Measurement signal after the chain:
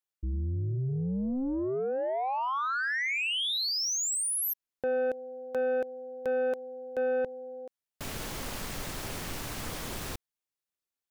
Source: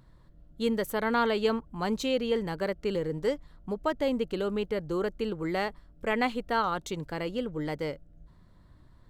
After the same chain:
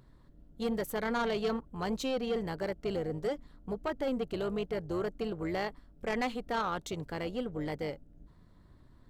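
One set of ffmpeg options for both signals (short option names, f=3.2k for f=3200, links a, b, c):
-af "asoftclip=type=tanh:threshold=-23dB,tremolo=f=260:d=0.519"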